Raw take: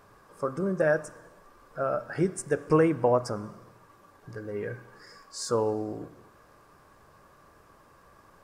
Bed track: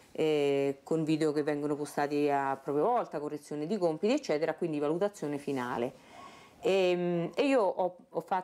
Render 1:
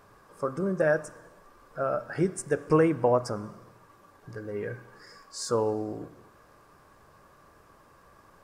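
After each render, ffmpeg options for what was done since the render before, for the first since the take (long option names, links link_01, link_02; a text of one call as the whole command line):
ffmpeg -i in.wav -af anull out.wav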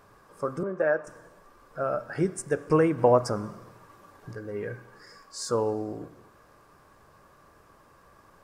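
ffmpeg -i in.wav -filter_complex "[0:a]asettb=1/sr,asplit=3[link_01][link_02][link_03];[link_01]atrim=end=0.634[link_04];[link_02]atrim=start=0.63:end=1.07,asetpts=PTS-STARTPTS,afade=type=in:duration=0.004:curve=qsin,afade=type=out:start_time=0.436:duration=0.004:curve=qsin,acrossover=split=280 3000:gain=0.224 1 0.141[link_05][link_06][link_07];[link_05][link_06][link_07]amix=inputs=3:normalize=0[link_08];[link_03]atrim=start=1.066[link_09];[link_04][link_08]acrossfade=duration=0.004:curve1=hsin:curve2=qsin[link_10];[link_10][link_09]acrossfade=duration=0.004:curve1=qsin:curve2=hsin,asplit=3[link_11][link_12][link_13];[link_11]atrim=end=2.982[link_14];[link_12]atrim=start=2.978:end=4.332,asetpts=PTS-STARTPTS,volume=3.5dB[link_15];[link_13]atrim=start=4.328[link_16];[link_14][link_15]acrossfade=duration=0.004:curve1=hsin:curve2=hsin[link_17];[link_17][link_16]acrossfade=duration=0.004:curve1=hsin:curve2=hsin" out.wav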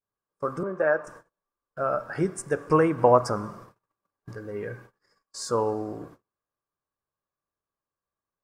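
ffmpeg -i in.wav -af "agate=range=-36dB:threshold=-47dB:ratio=16:detection=peak,adynamicequalizer=threshold=0.0126:dfrequency=1100:dqfactor=1.4:tfrequency=1100:tqfactor=1.4:attack=5:release=100:ratio=0.375:range=3:mode=boostabove:tftype=bell" out.wav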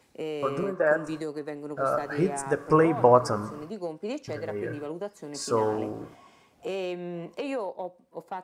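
ffmpeg -i in.wav -i bed.wav -filter_complex "[1:a]volume=-5dB[link_01];[0:a][link_01]amix=inputs=2:normalize=0" out.wav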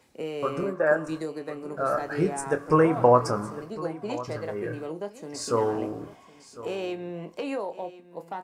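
ffmpeg -i in.wav -filter_complex "[0:a]asplit=2[link_01][link_02];[link_02]adelay=25,volume=-10.5dB[link_03];[link_01][link_03]amix=inputs=2:normalize=0,aecho=1:1:1056:0.15" out.wav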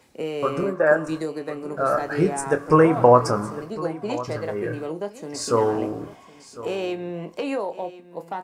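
ffmpeg -i in.wav -af "volume=4.5dB,alimiter=limit=-2dB:level=0:latency=1" out.wav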